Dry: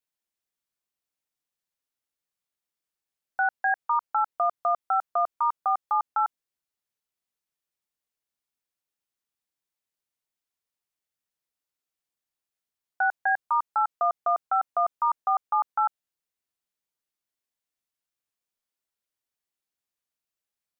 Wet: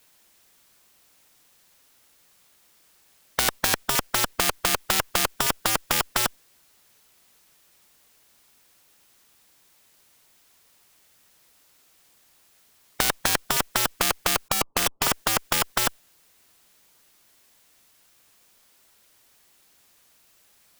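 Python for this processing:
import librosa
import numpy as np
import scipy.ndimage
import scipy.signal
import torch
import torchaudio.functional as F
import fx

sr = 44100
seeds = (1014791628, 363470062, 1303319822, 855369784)

p1 = fx.cheby_ripple(x, sr, hz=1200.0, ripple_db=3, at=(14.48, 15.07))
p2 = fx.schmitt(p1, sr, flips_db=-45.0)
p3 = p1 + (p2 * 10.0 ** (-8.5 / 20.0))
p4 = fx.spectral_comp(p3, sr, ratio=10.0)
y = p4 * 10.0 ** (9.0 / 20.0)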